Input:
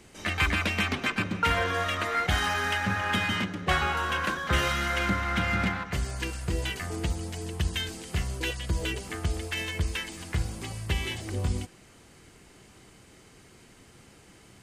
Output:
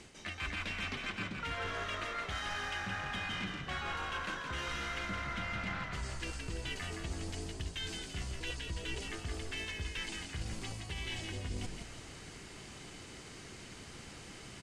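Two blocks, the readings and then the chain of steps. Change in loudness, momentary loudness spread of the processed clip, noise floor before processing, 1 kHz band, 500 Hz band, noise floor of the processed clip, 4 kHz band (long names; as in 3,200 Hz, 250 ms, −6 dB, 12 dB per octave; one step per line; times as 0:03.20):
−11.0 dB, 11 LU, −55 dBFS, −11.5 dB, −11.0 dB, −50 dBFS, −8.0 dB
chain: high-shelf EQ 3,000 Hz +9.5 dB
reversed playback
downward compressor 6 to 1, threshold −40 dBFS, peak gain reduction 20.5 dB
reversed playback
high-frequency loss of the air 75 metres
echo with shifted repeats 168 ms, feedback 42%, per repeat −54 Hz, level −5 dB
level +2 dB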